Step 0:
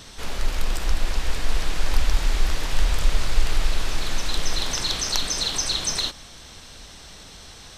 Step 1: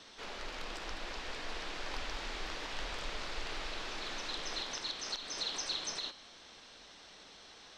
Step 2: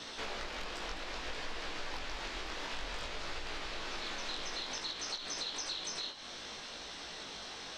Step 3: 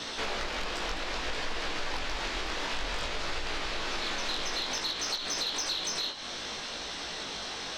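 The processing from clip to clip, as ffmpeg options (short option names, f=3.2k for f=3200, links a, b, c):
-filter_complex "[0:a]acrossover=split=230 6000:gain=0.141 1 0.0794[a][b][c];[a][b][c]amix=inputs=3:normalize=0,bandreject=f=132:t=h:w=4,bandreject=f=264:t=h:w=4,bandreject=f=396:t=h:w=4,bandreject=f=528:t=h:w=4,bandreject=f=660:t=h:w=4,bandreject=f=792:t=h:w=4,bandreject=f=924:t=h:w=4,bandreject=f=1.056k:t=h:w=4,bandreject=f=1.188k:t=h:w=4,bandreject=f=1.32k:t=h:w=4,bandreject=f=1.452k:t=h:w=4,bandreject=f=1.584k:t=h:w=4,bandreject=f=1.716k:t=h:w=4,bandreject=f=1.848k:t=h:w=4,bandreject=f=1.98k:t=h:w=4,bandreject=f=2.112k:t=h:w=4,bandreject=f=2.244k:t=h:w=4,bandreject=f=2.376k:t=h:w=4,bandreject=f=2.508k:t=h:w=4,bandreject=f=2.64k:t=h:w=4,bandreject=f=2.772k:t=h:w=4,bandreject=f=2.904k:t=h:w=4,bandreject=f=3.036k:t=h:w=4,bandreject=f=3.168k:t=h:w=4,bandreject=f=3.3k:t=h:w=4,bandreject=f=3.432k:t=h:w=4,bandreject=f=3.564k:t=h:w=4,bandreject=f=3.696k:t=h:w=4,bandreject=f=3.828k:t=h:w=4,bandreject=f=3.96k:t=h:w=4,bandreject=f=4.092k:t=h:w=4,bandreject=f=4.224k:t=h:w=4,bandreject=f=4.356k:t=h:w=4,bandreject=f=4.488k:t=h:w=4,bandreject=f=4.62k:t=h:w=4,bandreject=f=4.752k:t=h:w=4,alimiter=limit=-17.5dB:level=0:latency=1:release=274,volume=-8.5dB"
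-af "acompressor=threshold=-47dB:ratio=5,flanger=delay=17:depth=4.9:speed=0.58,volume=12.5dB"
-af "asoftclip=type=tanh:threshold=-29.5dB,volume=8dB"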